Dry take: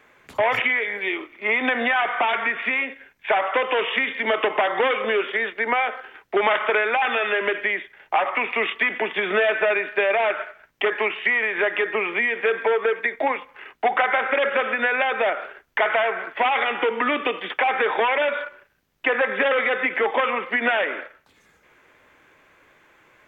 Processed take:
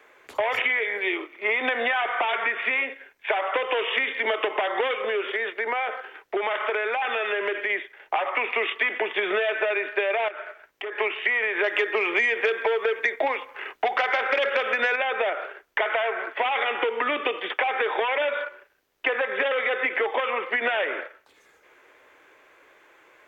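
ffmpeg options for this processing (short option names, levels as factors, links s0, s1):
-filter_complex "[0:a]asplit=3[s0][s1][s2];[s0]afade=t=out:st=4.94:d=0.02[s3];[s1]acompressor=threshold=0.0562:ratio=2:attack=3.2:release=140:knee=1:detection=peak,afade=t=in:st=4.94:d=0.02,afade=t=out:st=7.69:d=0.02[s4];[s2]afade=t=in:st=7.69:d=0.02[s5];[s3][s4][s5]amix=inputs=3:normalize=0,asettb=1/sr,asplit=3[s6][s7][s8];[s6]atrim=end=10.284[s9];[s7]atrim=start=10.28:end=10.98,asetpts=PTS-STARTPTS,afade=t=in:d=0.004:c=qsin,afade=t=out:st=0.696:d=0.004:c=qsin,acompressor=threshold=0.0251:ratio=5:attack=3.2:release=140:knee=1:detection=peak[s10];[s8]atrim=start=10.976[s11];[s9][s10]acrossfade=d=0.004:c1=hsin:c2=qsin[s12];[s12][s11]acrossfade=d=0.004:c1=qsin:c2=hsin,asettb=1/sr,asplit=3[s13][s14][s15];[s13]atrim=end=11.644[s16];[s14]atrim=start=11.64:end=14.96,asetpts=PTS-STARTPTS,afade=t=in:d=0.004:c=qsin,afade=t=out:st=3.316:d=0.004:c=qsin,acontrast=26[s17];[s15]atrim=start=14.956[s18];[s16][s17]acrossfade=d=0.004:c1=hsin:c2=qsin[s19];[s19][s18]acrossfade=d=0.004:c1=qsin:c2=hsin,lowshelf=f=270:t=q:w=1.5:g=-10.5,acrossover=split=120|3000[s20][s21][s22];[s21]acompressor=threshold=0.0794:ratio=6[s23];[s20][s23][s22]amix=inputs=3:normalize=0"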